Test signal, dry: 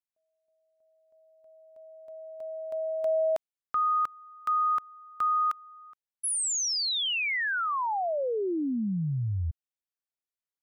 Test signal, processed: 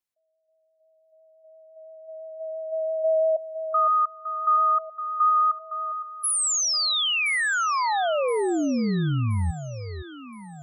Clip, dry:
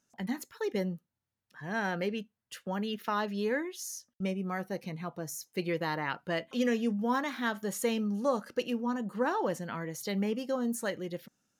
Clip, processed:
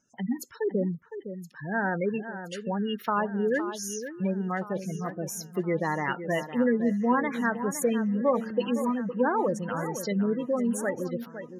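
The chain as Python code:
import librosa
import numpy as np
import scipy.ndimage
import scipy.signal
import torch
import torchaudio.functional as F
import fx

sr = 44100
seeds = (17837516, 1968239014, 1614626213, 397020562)

y = fx.vibrato(x, sr, rate_hz=5.9, depth_cents=11.0)
y = fx.spec_gate(y, sr, threshold_db=-15, keep='strong')
y = fx.echo_alternate(y, sr, ms=511, hz=2100.0, feedback_pct=66, wet_db=-10.5)
y = F.gain(torch.from_numpy(y), 5.0).numpy()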